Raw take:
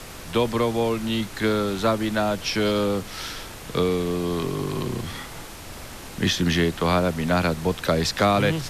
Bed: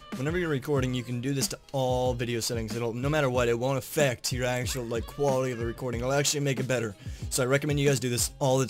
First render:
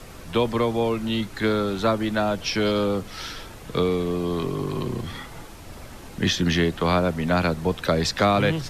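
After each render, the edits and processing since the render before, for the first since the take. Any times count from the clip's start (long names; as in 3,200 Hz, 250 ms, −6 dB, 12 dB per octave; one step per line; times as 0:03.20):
broadband denoise 7 dB, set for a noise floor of −39 dBFS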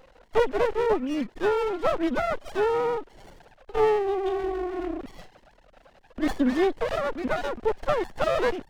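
three sine waves on the formant tracks
windowed peak hold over 33 samples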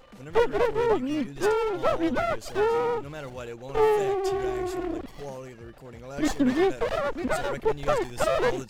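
mix in bed −12.5 dB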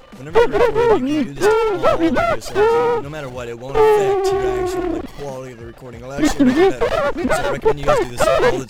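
level +9.5 dB
brickwall limiter −3 dBFS, peak gain reduction 2 dB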